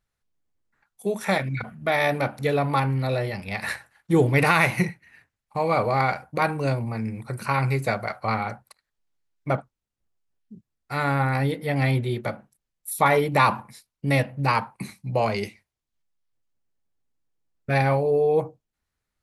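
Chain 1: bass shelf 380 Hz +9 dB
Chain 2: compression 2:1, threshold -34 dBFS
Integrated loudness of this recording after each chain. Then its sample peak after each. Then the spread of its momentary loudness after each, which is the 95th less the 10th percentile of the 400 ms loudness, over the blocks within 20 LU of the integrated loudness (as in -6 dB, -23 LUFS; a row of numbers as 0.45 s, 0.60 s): -19.5 LUFS, -32.5 LUFS; -2.5 dBFS, -14.0 dBFS; 13 LU, 12 LU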